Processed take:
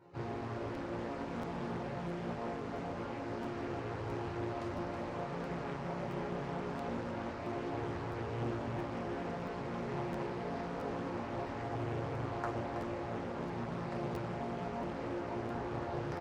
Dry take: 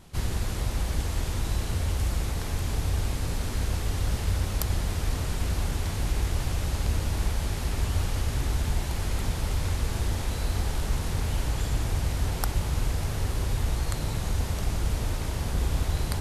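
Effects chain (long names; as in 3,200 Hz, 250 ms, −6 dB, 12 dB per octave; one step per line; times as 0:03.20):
high-pass filter 160 Hz 12 dB per octave
parametric band 610 Hz +4.5 dB 2.4 octaves
notch filter 3,300 Hz, Q 5.1
resonators tuned to a chord A#2 minor, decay 0.53 s
flanger 0.25 Hz, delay 2.1 ms, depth 3.3 ms, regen −32%
head-to-tape spacing loss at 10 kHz 35 dB
single-tap delay 323 ms −6 dB
regular buffer underruns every 0.67 s, samples 512, repeat, from 0:00.74
highs frequency-modulated by the lows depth 0.71 ms
level +17.5 dB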